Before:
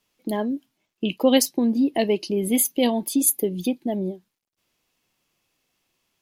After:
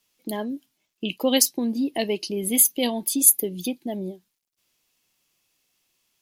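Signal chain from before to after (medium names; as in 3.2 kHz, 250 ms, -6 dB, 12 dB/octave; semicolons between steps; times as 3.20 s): treble shelf 2.8 kHz +10 dB; trim -4.5 dB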